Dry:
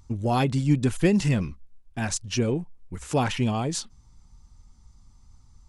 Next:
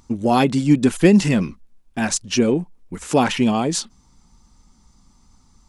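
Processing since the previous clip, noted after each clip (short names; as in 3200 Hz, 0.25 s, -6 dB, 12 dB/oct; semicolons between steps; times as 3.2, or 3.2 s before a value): resonant low shelf 150 Hz -9 dB, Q 1.5; gain +7 dB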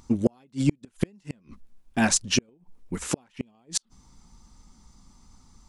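flipped gate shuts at -9 dBFS, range -41 dB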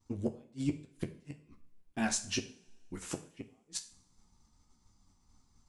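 flange 1.2 Hz, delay 9.1 ms, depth 6 ms, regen -30%; expander -53 dBFS; two-slope reverb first 0.47 s, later 2 s, from -25 dB, DRR 7.5 dB; gain -7.5 dB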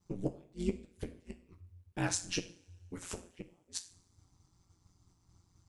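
ring modulator 89 Hz; gain +1.5 dB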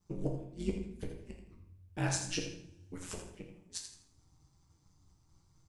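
feedback echo 82 ms, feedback 28%, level -9 dB; shoebox room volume 130 m³, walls mixed, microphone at 0.53 m; gain -2 dB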